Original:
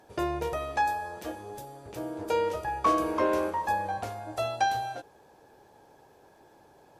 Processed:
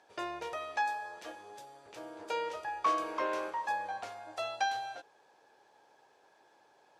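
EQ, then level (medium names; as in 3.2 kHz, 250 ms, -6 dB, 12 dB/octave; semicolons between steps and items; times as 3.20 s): high-pass 1.4 kHz 6 dB/octave; distance through air 68 m; 0.0 dB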